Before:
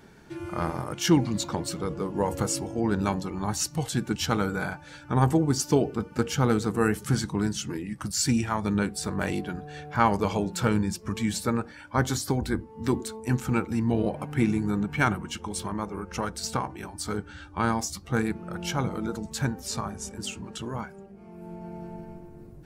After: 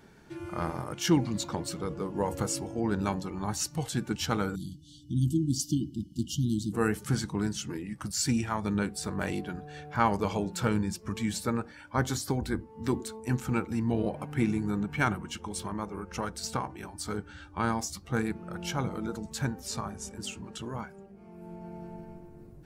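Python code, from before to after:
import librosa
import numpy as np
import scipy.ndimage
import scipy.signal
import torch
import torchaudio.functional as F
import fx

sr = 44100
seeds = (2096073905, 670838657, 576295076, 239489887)

y = fx.brickwall_bandstop(x, sr, low_hz=350.0, high_hz=2800.0, at=(4.54, 6.72), fade=0.02)
y = y * librosa.db_to_amplitude(-3.5)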